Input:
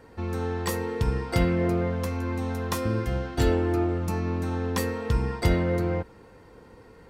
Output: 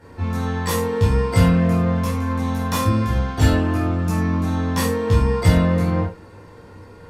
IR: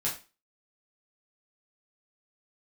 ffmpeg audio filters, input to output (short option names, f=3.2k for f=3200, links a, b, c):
-filter_complex "[1:a]atrim=start_sample=2205,atrim=end_sample=3528,asetrate=29547,aresample=44100[a];[0:a][a]afir=irnorm=-1:irlink=0,volume=-1dB"